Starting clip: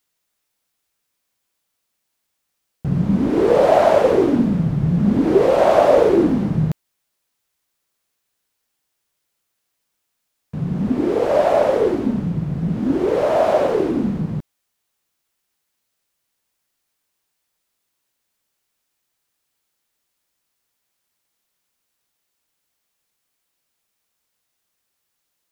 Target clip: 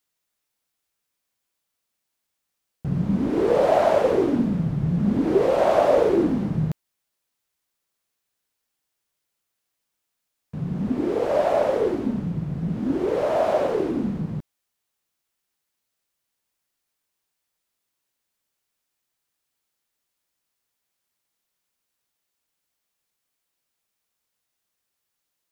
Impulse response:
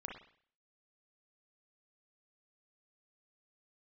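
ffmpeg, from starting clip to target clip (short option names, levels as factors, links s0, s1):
-af "volume=0.562"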